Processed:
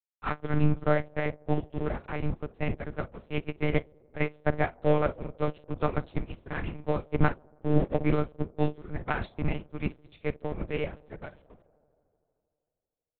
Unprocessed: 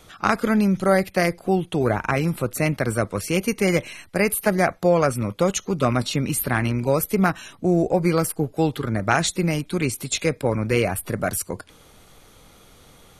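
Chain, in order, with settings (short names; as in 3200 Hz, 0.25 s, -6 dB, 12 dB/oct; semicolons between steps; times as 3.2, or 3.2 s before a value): octaver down 2 oct, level -5 dB; low shelf 130 Hz +7.5 dB; notches 60/120/180 Hz; crossover distortion -30 dBFS; doubler 49 ms -11 dB; band-limited delay 78 ms, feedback 82%, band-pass 440 Hz, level -12.5 dB; monotone LPC vocoder at 8 kHz 150 Hz; upward expander 2.5:1, over -27 dBFS; gain -2.5 dB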